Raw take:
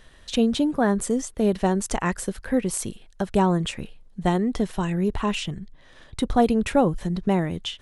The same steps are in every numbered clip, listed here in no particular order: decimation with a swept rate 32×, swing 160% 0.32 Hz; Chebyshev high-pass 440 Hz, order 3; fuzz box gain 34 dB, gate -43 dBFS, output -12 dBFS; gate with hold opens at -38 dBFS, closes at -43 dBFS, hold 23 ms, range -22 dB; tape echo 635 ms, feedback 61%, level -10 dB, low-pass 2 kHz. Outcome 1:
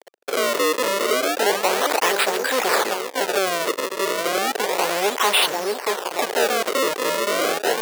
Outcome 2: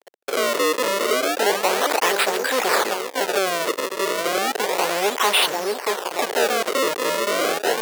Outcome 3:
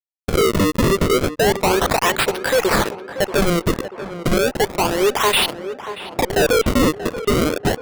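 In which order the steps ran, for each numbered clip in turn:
tape echo > fuzz box > gate with hold > decimation with a swept rate > Chebyshev high-pass; tape echo > decimation with a swept rate > fuzz box > gate with hold > Chebyshev high-pass; Chebyshev high-pass > fuzz box > decimation with a swept rate > gate with hold > tape echo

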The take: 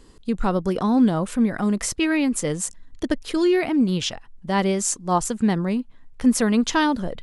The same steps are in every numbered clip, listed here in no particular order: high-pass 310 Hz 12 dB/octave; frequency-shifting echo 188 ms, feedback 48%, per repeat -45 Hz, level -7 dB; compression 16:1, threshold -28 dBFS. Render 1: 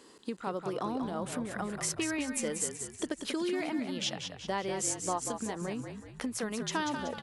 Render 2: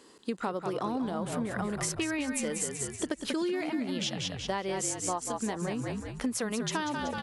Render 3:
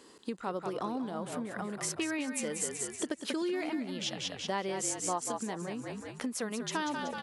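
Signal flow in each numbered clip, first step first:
compression > high-pass > frequency-shifting echo; high-pass > frequency-shifting echo > compression; frequency-shifting echo > compression > high-pass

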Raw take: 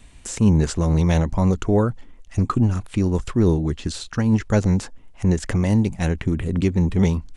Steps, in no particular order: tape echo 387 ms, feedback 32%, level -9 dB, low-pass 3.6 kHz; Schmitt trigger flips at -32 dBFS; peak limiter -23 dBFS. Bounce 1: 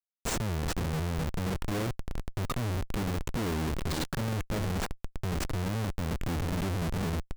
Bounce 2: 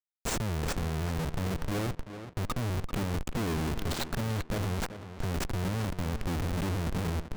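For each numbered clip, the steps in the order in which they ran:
peak limiter > tape echo > Schmitt trigger; peak limiter > Schmitt trigger > tape echo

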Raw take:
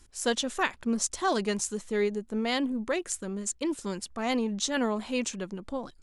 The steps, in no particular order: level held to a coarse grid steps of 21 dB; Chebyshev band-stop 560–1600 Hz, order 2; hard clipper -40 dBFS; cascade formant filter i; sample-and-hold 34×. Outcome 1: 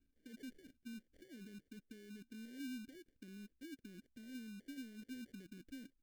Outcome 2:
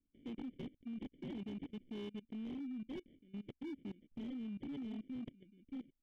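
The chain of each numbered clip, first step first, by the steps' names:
level held to a coarse grid > hard clipper > cascade formant filter > sample-and-hold > Chebyshev band-stop; sample-and-hold > cascade formant filter > level held to a coarse grid > Chebyshev band-stop > hard clipper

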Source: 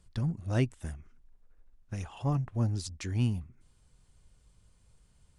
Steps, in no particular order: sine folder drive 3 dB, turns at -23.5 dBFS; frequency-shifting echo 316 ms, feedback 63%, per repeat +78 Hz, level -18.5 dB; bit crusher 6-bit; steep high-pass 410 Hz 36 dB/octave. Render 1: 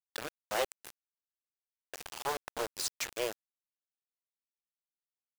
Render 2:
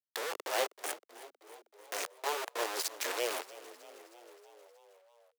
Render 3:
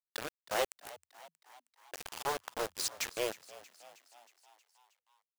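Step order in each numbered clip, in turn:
sine folder > steep high-pass > frequency-shifting echo > bit crusher; bit crusher > sine folder > frequency-shifting echo > steep high-pass; sine folder > steep high-pass > bit crusher > frequency-shifting echo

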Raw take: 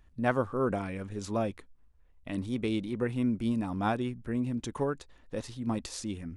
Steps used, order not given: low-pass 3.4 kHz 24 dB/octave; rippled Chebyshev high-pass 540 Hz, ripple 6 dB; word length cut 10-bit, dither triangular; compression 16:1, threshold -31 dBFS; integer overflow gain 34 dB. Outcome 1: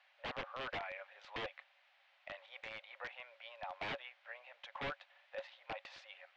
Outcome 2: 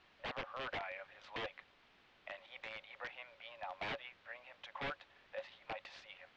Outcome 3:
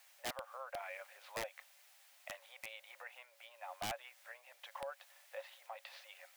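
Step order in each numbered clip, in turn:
word length cut > rippled Chebyshev high-pass > compression > integer overflow > low-pass; rippled Chebyshev high-pass > word length cut > compression > integer overflow > low-pass; low-pass > word length cut > compression > rippled Chebyshev high-pass > integer overflow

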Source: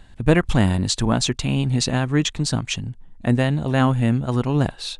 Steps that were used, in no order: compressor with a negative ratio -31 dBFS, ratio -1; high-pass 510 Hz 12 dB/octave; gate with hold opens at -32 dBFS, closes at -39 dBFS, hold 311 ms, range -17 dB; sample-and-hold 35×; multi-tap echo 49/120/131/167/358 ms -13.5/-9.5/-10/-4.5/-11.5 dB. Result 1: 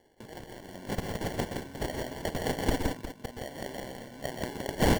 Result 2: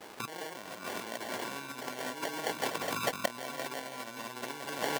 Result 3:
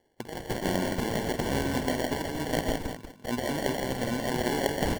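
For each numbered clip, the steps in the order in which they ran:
compressor with a negative ratio > high-pass > sample-and-hold > multi-tap echo > gate with hold; sample-and-hold > multi-tap echo > compressor with a negative ratio > gate with hold > high-pass; gate with hold > high-pass > compressor with a negative ratio > sample-and-hold > multi-tap echo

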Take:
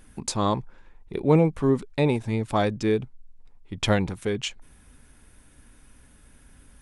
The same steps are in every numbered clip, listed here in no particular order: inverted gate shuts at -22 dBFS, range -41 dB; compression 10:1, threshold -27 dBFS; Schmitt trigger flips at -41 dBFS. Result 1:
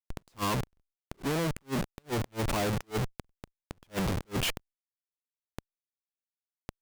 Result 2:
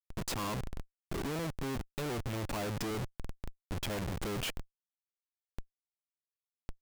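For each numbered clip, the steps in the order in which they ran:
Schmitt trigger > inverted gate > compression; compression > Schmitt trigger > inverted gate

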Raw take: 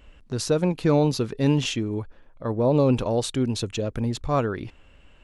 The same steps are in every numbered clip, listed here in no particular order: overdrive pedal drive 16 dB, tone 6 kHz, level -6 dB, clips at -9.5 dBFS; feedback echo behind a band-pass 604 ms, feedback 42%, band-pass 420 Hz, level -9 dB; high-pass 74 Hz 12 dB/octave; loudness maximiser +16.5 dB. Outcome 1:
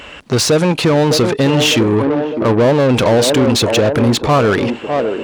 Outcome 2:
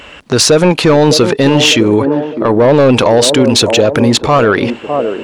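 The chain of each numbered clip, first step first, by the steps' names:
feedback echo behind a band-pass > loudness maximiser > overdrive pedal > high-pass; high-pass > overdrive pedal > feedback echo behind a band-pass > loudness maximiser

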